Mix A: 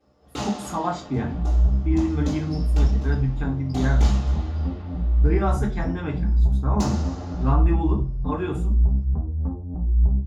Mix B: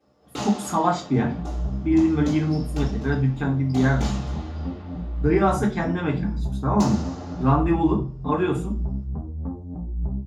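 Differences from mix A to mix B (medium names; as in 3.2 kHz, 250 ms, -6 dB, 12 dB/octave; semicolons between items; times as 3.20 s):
speech +5.0 dB; master: add high-pass 100 Hz 12 dB/octave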